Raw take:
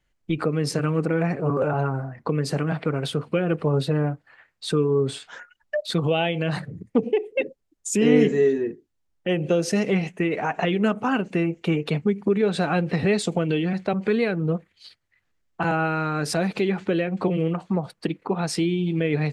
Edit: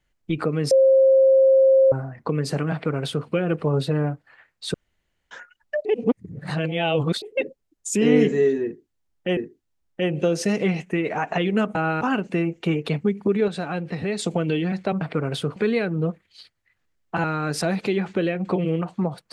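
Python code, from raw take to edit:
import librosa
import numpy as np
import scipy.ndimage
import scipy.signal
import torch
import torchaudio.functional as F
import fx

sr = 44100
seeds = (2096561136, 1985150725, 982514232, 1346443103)

y = fx.edit(x, sr, fx.bleep(start_s=0.71, length_s=1.21, hz=533.0, db=-11.5),
    fx.duplicate(start_s=2.72, length_s=0.55, to_s=14.02),
    fx.room_tone_fill(start_s=4.74, length_s=0.57),
    fx.reverse_span(start_s=5.85, length_s=1.37),
    fx.repeat(start_s=8.64, length_s=0.73, count=2),
    fx.clip_gain(start_s=12.49, length_s=0.71, db=-5.5),
    fx.move(start_s=15.7, length_s=0.26, to_s=11.02), tone=tone)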